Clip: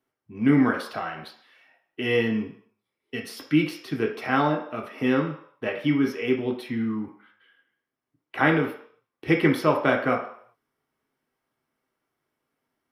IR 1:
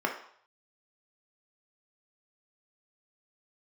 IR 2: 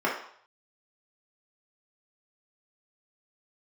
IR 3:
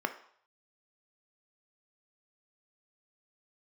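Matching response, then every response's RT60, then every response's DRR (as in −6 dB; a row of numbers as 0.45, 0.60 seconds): 1; 0.60, 0.60, 0.60 seconds; 0.5, −5.5, 7.0 decibels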